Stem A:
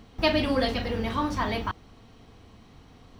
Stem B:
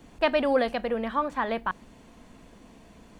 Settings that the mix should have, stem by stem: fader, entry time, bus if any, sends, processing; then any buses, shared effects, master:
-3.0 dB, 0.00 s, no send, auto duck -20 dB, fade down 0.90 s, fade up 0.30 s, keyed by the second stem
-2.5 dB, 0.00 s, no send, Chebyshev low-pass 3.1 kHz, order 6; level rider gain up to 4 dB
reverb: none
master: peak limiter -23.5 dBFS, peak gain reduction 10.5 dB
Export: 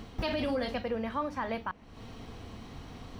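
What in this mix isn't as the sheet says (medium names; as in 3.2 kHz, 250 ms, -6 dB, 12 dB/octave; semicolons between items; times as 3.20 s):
stem A -3.0 dB -> +6.0 dB; stem B -2.5 dB -> -9.0 dB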